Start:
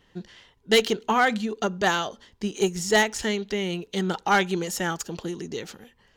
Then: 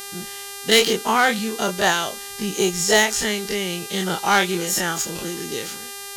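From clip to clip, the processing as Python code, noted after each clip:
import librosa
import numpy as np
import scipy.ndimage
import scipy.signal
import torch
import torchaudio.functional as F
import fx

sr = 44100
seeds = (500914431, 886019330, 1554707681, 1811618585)

y = fx.spec_dilate(x, sr, span_ms=60)
y = fx.peak_eq(y, sr, hz=12000.0, db=7.0, octaves=2.5)
y = fx.dmg_buzz(y, sr, base_hz=400.0, harmonics=33, level_db=-34.0, tilt_db=-1, odd_only=False)
y = y * 10.0 ** (-1.0 / 20.0)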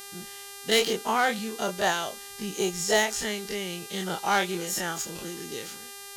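y = fx.dynamic_eq(x, sr, hz=640.0, q=1.6, threshold_db=-30.0, ratio=4.0, max_db=4)
y = y * 10.0 ** (-8.0 / 20.0)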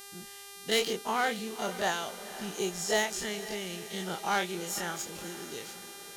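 y = fx.echo_diffused(x, sr, ms=507, feedback_pct=54, wet_db=-14)
y = y * 10.0 ** (-5.0 / 20.0)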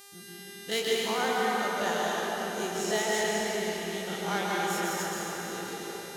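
y = scipy.signal.sosfilt(scipy.signal.butter(2, 59.0, 'highpass', fs=sr, output='sos'), x)
y = fx.rev_plate(y, sr, seeds[0], rt60_s=4.4, hf_ratio=0.5, predelay_ms=110, drr_db=-5.0)
y = y * 10.0 ** (-3.5 / 20.0)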